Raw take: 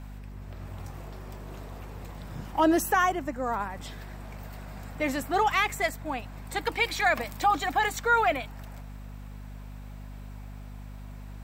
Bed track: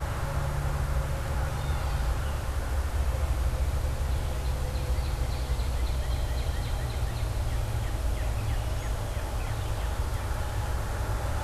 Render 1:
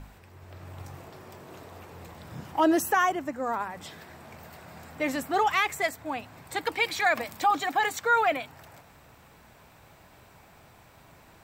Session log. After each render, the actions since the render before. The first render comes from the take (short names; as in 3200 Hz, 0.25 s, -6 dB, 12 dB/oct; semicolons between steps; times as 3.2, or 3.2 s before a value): de-hum 50 Hz, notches 5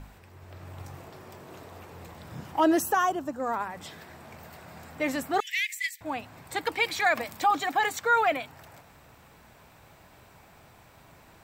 2.84–3.4 bell 2100 Hz -13 dB 0.43 oct; 5.4–6.01 steep high-pass 1800 Hz 96 dB/oct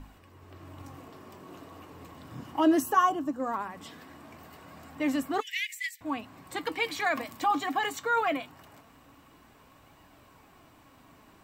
flange 0.2 Hz, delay 1 ms, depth 7.5 ms, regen +73%; small resonant body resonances 280/1100/2900 Hz, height 11 dB, ringing for 45 ms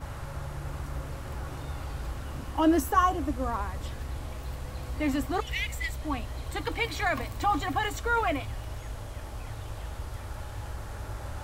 add bed track -7.5 dB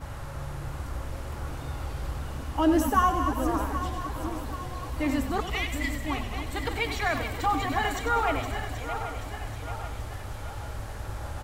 regenerating reverse delay 0.391 s, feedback 70%, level -8.5 dB; frequency-shifting echo 96 ms, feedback 53%, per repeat -34 Hz, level -10 dB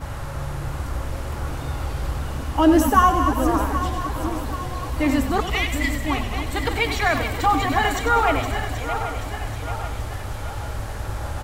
gain +7 dB